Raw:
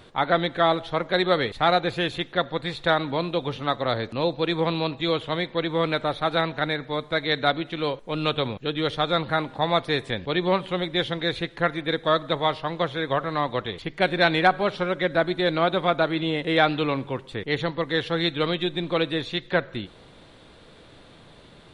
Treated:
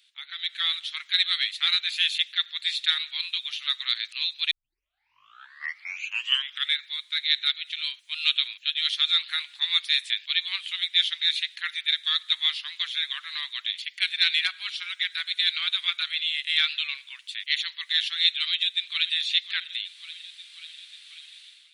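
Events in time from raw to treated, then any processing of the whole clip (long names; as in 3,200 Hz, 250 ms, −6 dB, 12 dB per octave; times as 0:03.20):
0:04.51: tape start 2.29 s
0:18.49–0:19.13: delay throw 540 ms, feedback 65%, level −13.5 dB
whole clip: inverse Chebyshev high-pass filter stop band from 550 Hz, stop band 70 dB; automatic gain control gain up to 14.5 dB; level −5 dB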